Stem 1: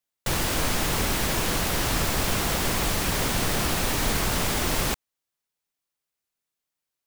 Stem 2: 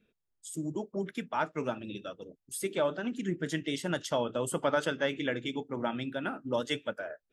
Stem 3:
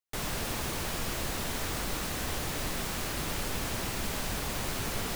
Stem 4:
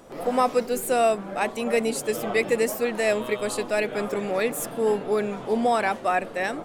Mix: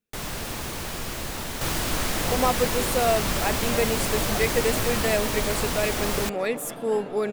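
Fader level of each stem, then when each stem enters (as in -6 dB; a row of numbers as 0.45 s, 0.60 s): -2.5 dB, -16.0 dB, +1.5 dB, -2.0 dB; 1.35 s, 0.00 s, 0.00 s, 2.05 s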